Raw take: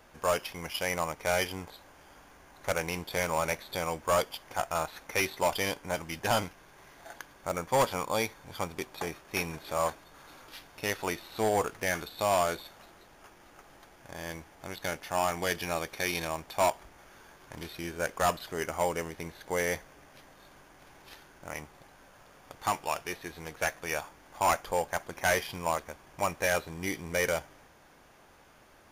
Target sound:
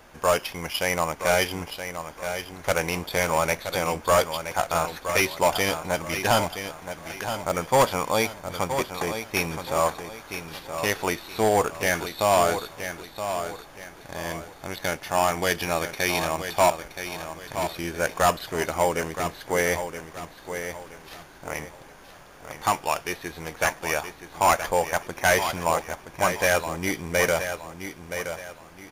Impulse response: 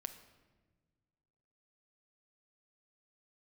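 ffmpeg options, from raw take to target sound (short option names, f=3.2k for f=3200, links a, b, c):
-af "aecho=1:1:972|1944|2916|3888:0.355|0.121|0.041|0.0139,volume=6.5dB"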